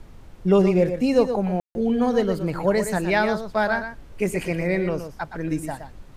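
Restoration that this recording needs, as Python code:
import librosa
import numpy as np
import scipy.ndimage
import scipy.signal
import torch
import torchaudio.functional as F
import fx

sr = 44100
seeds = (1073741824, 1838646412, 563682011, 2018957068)

y = fx.fix_ambience(x, sr, seeds[0], print_start_s=0.0, print_end_s=0.5, start_s=1.6, end_s=1.75)
y = fx.noise_reduce(y, sr, print_start_s=0.0, print_end_s=0.5, reduce_db=24.0)
y = fx.fix_echo_inverse(y, sr, delay_ms=119, level_db=-9.0)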